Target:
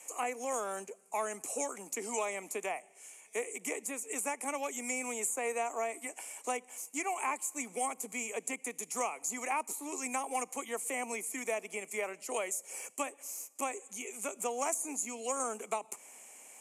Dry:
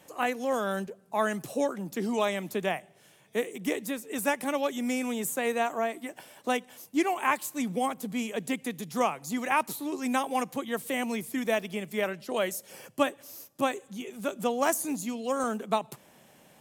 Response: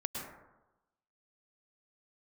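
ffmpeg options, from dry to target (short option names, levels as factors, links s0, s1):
-filter_complex "[0:a]acrossover=split=590|1400[s0][s1][s2];[s0]acompressor=threshold=0.0251:ratio=4[s3];[s1]acompressor=threshold=0.02:ratio=4[s4];[s2]acompressor=threshold=0.00501:ratio=4[s5];[s3][s4][s5]amix=inputs=3:normalize=0,aexciter=amount=5.2:drive=5.2:freq=6700,asoftclip=type=tanh:threshold=0.126,highpass=f=320:w=0.5412,highpass=f=320:w=1.3066,equalizer=f=340:t=q:w=4:g=-8,equalizer=f=570:t=q:w=4:g=-6,equalizer=f=1600:t=q:w=4:g=-8,equalizer=f=2300:t=q:w=4:g=10,equalizer=f=3600:t=q:w=4:g=-10,equalizer=f=7000:t=q:w=4:g=6,lowpass=f=9700:w=0.5412,lowpass=f=9700:w=1.3066"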